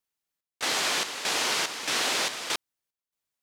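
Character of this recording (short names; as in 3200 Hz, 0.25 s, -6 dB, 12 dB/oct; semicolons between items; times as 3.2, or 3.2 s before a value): chopped level 1.6 Hz, depth 65%, duty 65%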